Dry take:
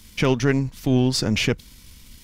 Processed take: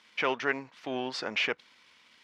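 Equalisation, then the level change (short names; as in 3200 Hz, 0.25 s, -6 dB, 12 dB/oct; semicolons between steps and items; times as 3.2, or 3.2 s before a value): BPF 730–2400 Hz; 0.0 dB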